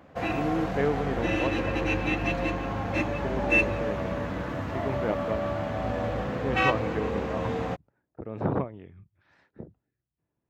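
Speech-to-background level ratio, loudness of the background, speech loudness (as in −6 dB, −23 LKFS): −5.0 dB, −28.5 LKFS, −33.5 LKFS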